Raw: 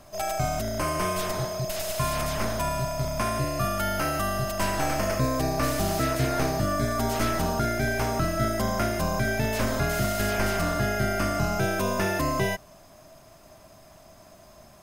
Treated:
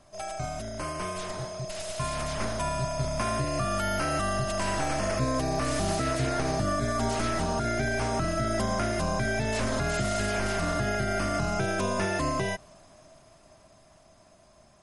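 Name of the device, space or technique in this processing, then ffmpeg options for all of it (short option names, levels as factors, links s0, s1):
low-bitrate web radio: -af "dynaudnorm=f=360:g=17:m=3.55,alimiter=limit=0.251:level=0:latency=1:release=133,volume=0.473" -ar 48000 -c:a libmp3lame -b:a 48k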